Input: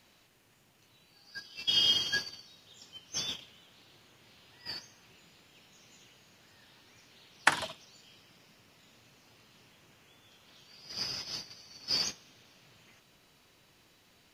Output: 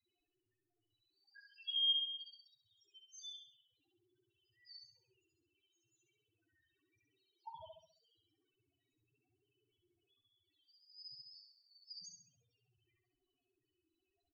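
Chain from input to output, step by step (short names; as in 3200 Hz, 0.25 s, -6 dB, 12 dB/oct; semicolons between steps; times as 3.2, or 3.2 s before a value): envelope flanger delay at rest 2.9 ms, full sweep at -29.5 dBFS; loudest bins only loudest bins 2; feedback echo 67 ms, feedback 42%, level -4 dB; gain -7.5 dB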